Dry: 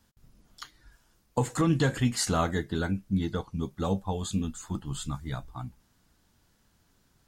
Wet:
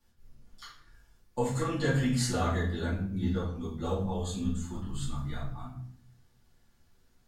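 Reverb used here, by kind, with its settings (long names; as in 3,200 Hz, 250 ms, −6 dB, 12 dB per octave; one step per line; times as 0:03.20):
rectangular room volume 99 cubic metres, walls mixed, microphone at 2.4 metres
level −12.5 dB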